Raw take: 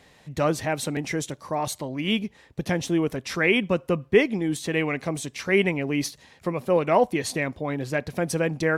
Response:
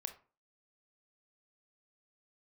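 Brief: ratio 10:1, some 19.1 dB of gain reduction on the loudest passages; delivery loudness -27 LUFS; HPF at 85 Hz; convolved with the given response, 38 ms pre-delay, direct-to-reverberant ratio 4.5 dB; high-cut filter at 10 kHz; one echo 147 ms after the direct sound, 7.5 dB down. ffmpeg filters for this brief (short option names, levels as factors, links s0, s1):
-filter_complex "[0:a]highpass=85,lowpass=10000,acompressor=threshold=0.0251:ratio=10,aecho=1:1:147:0.422,asplit=2[s0][s1];[1:a]atrim=start_sample=2205,adelay=38[s2];[s1][s2]afir=irnorm=-1:irlink=0,volume=0.794[s3];[s0][s3]amix=inputs=2:normalize=0,volume=2.51"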